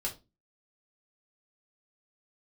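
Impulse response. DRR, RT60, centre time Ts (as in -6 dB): -3.0 dB, 0.25 s, 14 ms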